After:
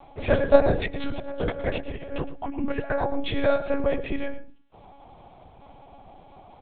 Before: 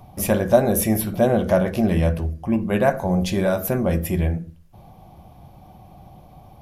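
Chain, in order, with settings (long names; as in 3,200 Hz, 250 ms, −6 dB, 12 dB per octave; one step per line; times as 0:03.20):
0:00.80–0:03.13: compressor whose output falls as the input rises −24 dBFS, ratio −0.5
high-pass filter 94 Hz 12 dB per octave
low-shelf EQ 210 Hz −11 dB
one-pitch LPC vocoder at 8 kHz 280 Hz
single-tap delay 113 ms −15.5 dB
level +1.5 dB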